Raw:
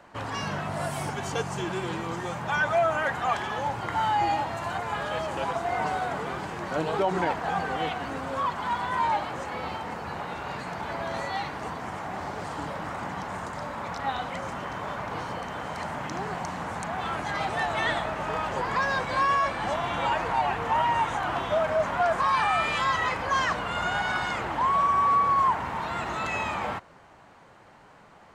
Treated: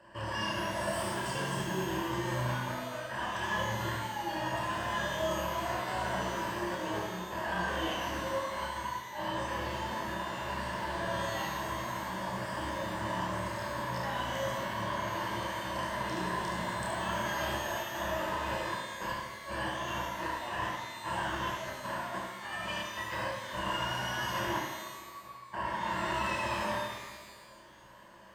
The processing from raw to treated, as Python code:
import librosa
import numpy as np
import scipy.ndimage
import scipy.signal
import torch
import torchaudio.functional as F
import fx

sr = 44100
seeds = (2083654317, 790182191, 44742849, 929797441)

y = fx.ripple_eq(x, sr, per_octave=1.3, db=14)
y = fx.over_compress(y, sr, threshold_db=-28.0, ratio=-0.5)
y = y + 10.0 ** (-5.5 / 20.0) * np.pad(y, (int(72 * sr / 1000.0), 0))[:len(y)]
y = fx.chorus_voices(y, sr, voices=2, hz=0.57, base_ms=30, depth_ms=1.8, mix_pct=40)
y = fx.rev_shimmer(y, sr, seeds[0], rt60_s=1.3, semitones=12, shimmer_db=-8, drr_db=1.5)
y = F.gain(torch.from_numpy(y), -7.5).numpy()